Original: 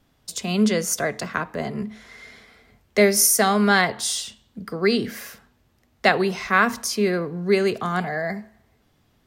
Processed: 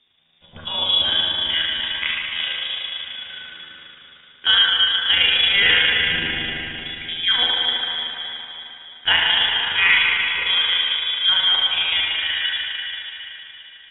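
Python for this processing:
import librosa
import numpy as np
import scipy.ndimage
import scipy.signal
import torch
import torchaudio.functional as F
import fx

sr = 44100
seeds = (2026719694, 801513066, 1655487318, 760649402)

y = fx.freq_invert(x, sr, carrier_hz=3600)
y = fx.rev_spring(y, sr, rt60_s=2.5, pass_ms=(30, 42), chirp_ms=75, drr_db=-3.5)
y = fx.stretch_grains(y, sr, factor=1.5, grain_ms=75.0)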